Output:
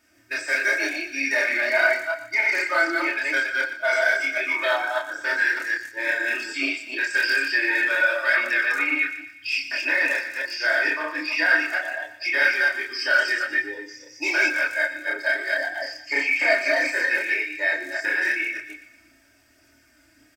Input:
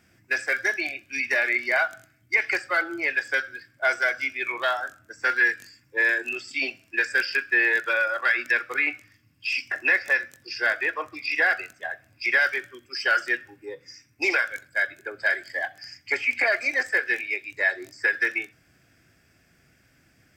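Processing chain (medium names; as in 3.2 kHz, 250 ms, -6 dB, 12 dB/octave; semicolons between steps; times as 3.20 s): chunks repeated in reverse 151 ms, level -1 dB; tone controls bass -7 dB, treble +3 dB; comb 3.2 ms, depth 82%; chorus voices 2, 0.89 Hz, delay 29 ms, depth 3.9 ms; on a send: thinning echo 119 ms, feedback 50%, high-pass 960 Hz, level -12 dB; on the sum: FDN reverb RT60 0.33 s, low-frequency decay 1×, high-frequency decay 0.5×, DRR 3.5 dB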